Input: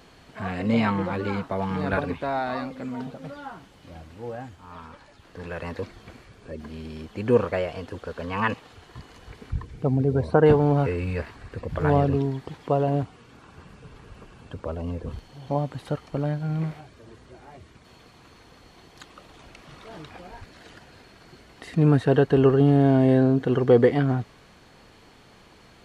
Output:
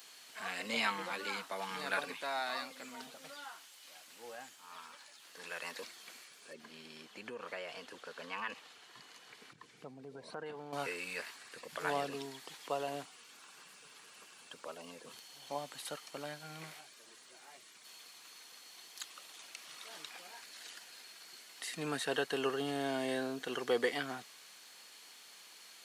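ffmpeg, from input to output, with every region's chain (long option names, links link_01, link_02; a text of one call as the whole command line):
ffmpeg -i in.wav -filter_complex "[0:a]asettb=1/sr,asplit=3[link_01][link_02][link_03];[link_01]atrim=end=3.444[link_04];[link_02]atrim=start=3.44:end=4.08,asetpts=PTS-STARTPTS,afade=type=in:duration=0.004:curve=qsin,afade=type=out:start_time=0.636:duration=0.004:curve=qsin,highpass=frequency=620:poles=1,acompressor=mode=upward:threshold=-57dB:ratio=2.5:attack=3.2:release=140:knee=2.83:detection=peak[link_05];[link_03]atrim=start=4.076[link_06];[link_04][link_05]acrossfade=duration=0.004:curve1=hsin:curve2=qsin[link_07];[link_07][link_06]acrossfade=duration=0.004:curve1=qsin:curve2=hsin,asettb=1/sr,asplit=3[link_08][link_09][link_10];[link_08]atrim=end=6.534[link_11];[link_09]atrim=start=6.53:end=10.73,asetpts=PTS-STARTPTS,afade=type=in:duration=0.004:curve=qsin,afade=type=out:start_time=4.196:duration=0.004:curve=qsin,lowpass=frequency=2800:poles=1,lowshelf=frequency=170:gain=7.5,acompressor=threshold=-25dB:ratio=6:attack=3.2:release=140:knee=1:detection=peak[link_12];[link_10]atrim=start=10.726[link_13];[link_11][link_12]acrossfade=duration=0.004:curve1=hsin:curve2=qsin[link_14];[link_14][link_13]acrossfade=duration=0.004:curve1=qsin:curve2=hsin,highpass=frequency=150:width=0.5412,highpass=frequency=150:width=1.3066,aderivative,volume=8dB" out.wav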